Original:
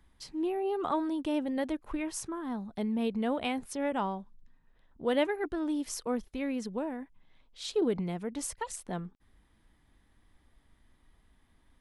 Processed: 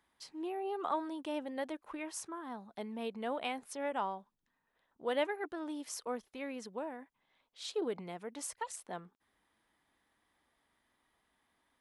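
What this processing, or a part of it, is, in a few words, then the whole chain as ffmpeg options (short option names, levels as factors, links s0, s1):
filter by subtraction: -filter_complex "[0:a]asplit=2[s0][s1];[s1]lowpass=790,volume=-1[s2];[s0][s2]amix=inputs=2:normalize=0,volume=0.596"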